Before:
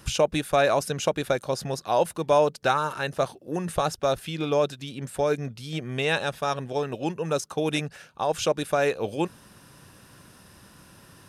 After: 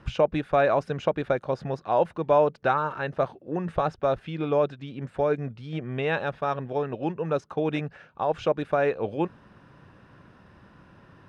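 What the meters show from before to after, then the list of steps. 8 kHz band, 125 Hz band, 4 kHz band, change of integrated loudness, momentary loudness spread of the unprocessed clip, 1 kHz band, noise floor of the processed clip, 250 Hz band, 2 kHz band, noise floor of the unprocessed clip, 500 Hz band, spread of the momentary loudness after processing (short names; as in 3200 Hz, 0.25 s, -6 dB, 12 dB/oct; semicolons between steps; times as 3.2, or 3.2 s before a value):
under -20 dB, 0.0 dB, -10.5 dB, -0.5 dB, 8 LU, 0.0 dB, -56 dBFS, 0.0 dB, -2.5 dB, -53 dBFS, 0.0 dB, 8 LU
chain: LPF 2000 Hz 12 dB/oct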